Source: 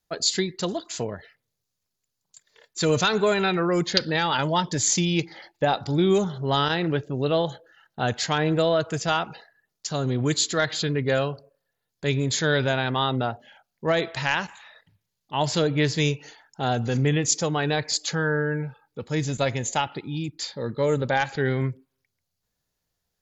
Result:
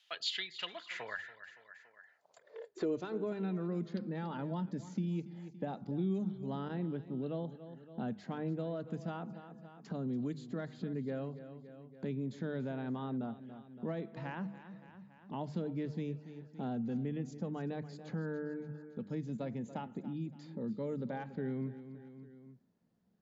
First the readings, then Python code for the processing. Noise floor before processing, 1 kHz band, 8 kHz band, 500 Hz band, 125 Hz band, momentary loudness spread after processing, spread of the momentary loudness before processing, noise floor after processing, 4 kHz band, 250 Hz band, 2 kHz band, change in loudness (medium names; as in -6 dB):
-81 dBFS, -19.5 dB, under -30 dB, -16.5 dB, -13.5 dB, 14 LU, 10 LU, -66 dBFS, -19.0 dB, -10.0 dB, -20.5 dB, -15.0 dB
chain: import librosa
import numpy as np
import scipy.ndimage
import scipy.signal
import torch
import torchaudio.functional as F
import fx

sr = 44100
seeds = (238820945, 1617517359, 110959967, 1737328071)

y = fx.filter_sweep_bandpass(x, sr, from_hz=3100.0, to_hz=210.0, start_s=0.48, end_s=3.47, q=5.3)
y = fx.low_shelf(y, sr, hz=420.0, db=-9.5)
y = fx.hum_notches(y, sr, base_hz=50, count=4)
y = fx.echo_feedback(y, sr, ms=283, feedback_pct=34, wet_db=-16.5)
y = fx.band_squash(y, sr, depth_pct=70)
y = y * 10.0 ** (7.0 / 20.0)